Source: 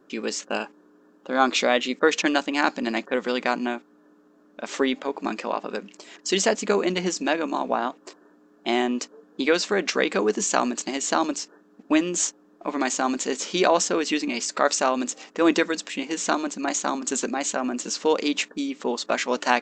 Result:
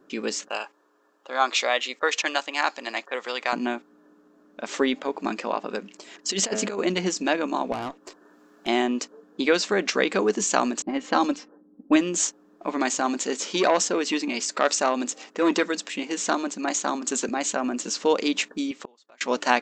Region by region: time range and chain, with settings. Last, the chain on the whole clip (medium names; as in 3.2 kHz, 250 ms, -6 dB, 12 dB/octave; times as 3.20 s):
0.48–3.53 s: high-pass 660 Hz + band-stop 1.5 kHz, Q 15
6.29–6.80 s: high-pass 53 Hz + de-hum 107.6 Hz, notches 30 + compressor with a negative ratio -25 dBFS, ratio -0.5
7.72–8.68 s: valve stage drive 26 dB, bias 0.3 + tape noise reduction on one side only encoder only
10.82–11.96 s: level-controlled noise filter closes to 340 Hz, open at -18 dBFS + comb 3.8 ms, depth 51%
12.99–17.29 s: high-pass 170 Hz + transformer saturation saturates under 1.1 kHz
18.71–19.21 s: high-pass 470 Hz 6 dB/octave + inverted gate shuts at -21 dBFS, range -29 dB
whole clip: none